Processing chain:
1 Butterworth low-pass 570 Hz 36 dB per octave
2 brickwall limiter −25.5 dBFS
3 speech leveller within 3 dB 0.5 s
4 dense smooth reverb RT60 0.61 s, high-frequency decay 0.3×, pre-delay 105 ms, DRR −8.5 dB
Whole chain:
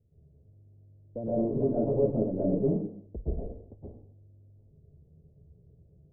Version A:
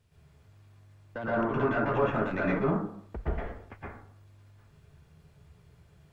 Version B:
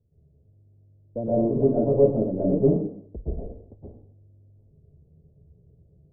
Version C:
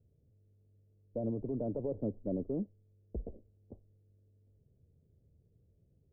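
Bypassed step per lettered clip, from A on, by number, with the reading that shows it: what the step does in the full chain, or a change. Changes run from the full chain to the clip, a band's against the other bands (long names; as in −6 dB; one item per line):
1, 1 kHz band +14.5 dB
2, average gain reduction 2.5 dB
4, change in momentary loudness spread +2 LU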